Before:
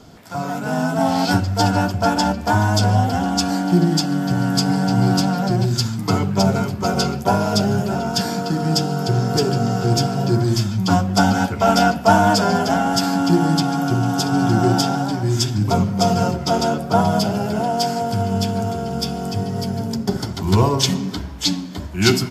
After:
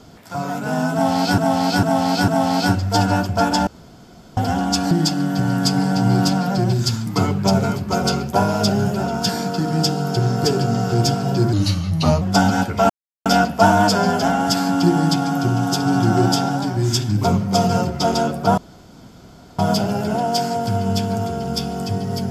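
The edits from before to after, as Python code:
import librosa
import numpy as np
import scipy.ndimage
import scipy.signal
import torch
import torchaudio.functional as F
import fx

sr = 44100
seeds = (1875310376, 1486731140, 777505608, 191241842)

y = fx.edit(x, sr, fx.repeat(start_s=0.93, length_s=0.45, count=4),
    fx.room_tone_fill(start_s=2.32, length_s=0.7),
    fx.cut(start_s=3.56, length_s=0.27),
    fx.speed_span(start_s=10.45, length_s=0.59, speed=0.86),
    fx.insert_silence(at_s=11.72, length_s=0.36),
    fx.insert_room_tone(at_s=17.04, length_s=1.01), tone=tone)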